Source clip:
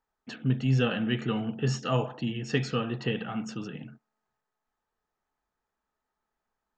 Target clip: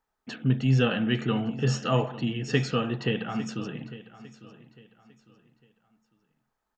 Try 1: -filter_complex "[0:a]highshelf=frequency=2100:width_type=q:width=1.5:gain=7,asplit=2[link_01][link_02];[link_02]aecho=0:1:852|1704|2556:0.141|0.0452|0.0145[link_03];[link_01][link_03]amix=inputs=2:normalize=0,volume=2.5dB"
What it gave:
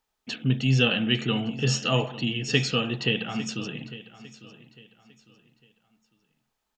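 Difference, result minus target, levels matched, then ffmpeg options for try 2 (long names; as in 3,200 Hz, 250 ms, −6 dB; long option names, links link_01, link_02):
4,000 Hz band +7.0 dB
-filter_complex "[0:a]asplit=2[link_01][link_02];[link_02]aecho=0:1:852|1704|2556:0.141|0.0452|0.0145[link_03];[link_01][link_03]amix=inputs=2:normalize=0,volume=2.5dB"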